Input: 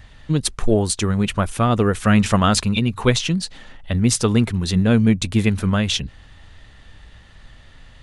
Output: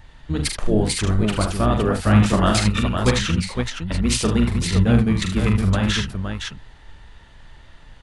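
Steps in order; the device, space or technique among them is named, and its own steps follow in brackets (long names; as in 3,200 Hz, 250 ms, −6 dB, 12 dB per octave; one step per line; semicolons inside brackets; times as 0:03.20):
multi-tap delay 42/70/76/77/513 ms −6/−16.5/−9/−19/−6 dB
octave pedal (pitch-shifted copies added −12 semitones −2 dB)
level −4.5 dB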